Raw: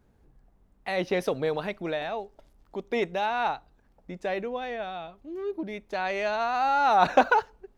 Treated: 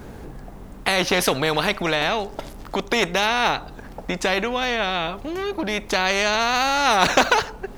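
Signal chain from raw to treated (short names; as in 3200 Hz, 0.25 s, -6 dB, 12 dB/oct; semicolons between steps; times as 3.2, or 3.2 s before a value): in parallel at +0.5 dB: compressor, threshold -39 dBFS, peak gain reduction 23 dB; on the sum: spectral compressor 2:1; gain +5 dB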